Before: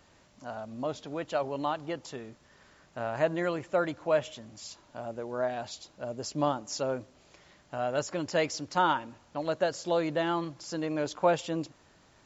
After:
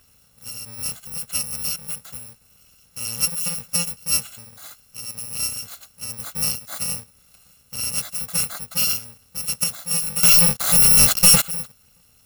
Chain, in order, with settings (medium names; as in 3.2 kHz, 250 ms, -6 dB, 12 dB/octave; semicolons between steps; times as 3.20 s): bit-reversed sample order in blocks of 128 samples; 10.23–11.42 s: waveshaping leveller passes 5; trim +4.5 dB